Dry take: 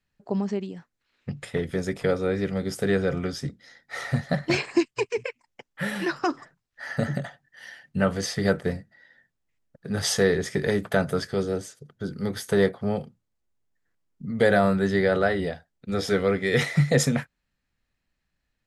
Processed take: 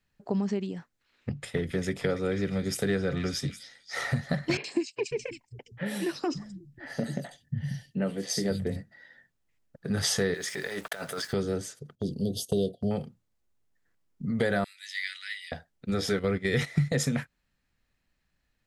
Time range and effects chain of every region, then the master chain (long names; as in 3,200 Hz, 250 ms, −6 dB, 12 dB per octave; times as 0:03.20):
0:01.29–0:03.97: echo through a band-pass that steps 273 ms, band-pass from 3,000 Hz, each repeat 0.7 octaves, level −4.5 dB + multiband upward and downward expander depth 40%
0:04.57–0:08.76: parametric band 1,300 Hz −12.5 dB 1.5 octaves + three-band delay without the direct sound mids, highs, lows 70/540 ms, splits 160/3,000 Hz
0:10.34–0:11.33: high-pass filter 1,200 Hz 6 dB per octave + compressor whose output falls as the input rises −36 dBFS + centre clipping without the shift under −48.5 dBFS
0:11.95–0:12.91: linear-phase brick-wall band-stop 740–2,700 Hz + noise gate −40 dBFS, range −11 dB
0:14.64–0:15.52: elliptic high-pass filter 2,100 Hz, stop band 70 dB + multiband upward and downward expander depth 40%
0:16.19–0:16.93: noise gate −28 dBFS, range −10 dB + low-shelf EQ 120 Hz +9 dB
whole clip: dynamic equaliser 710 Hz, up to −4 dB, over −36 dBFS, Q 0.76; downward compressor 3 to 1, threshold −27 dBFS; level +2 dB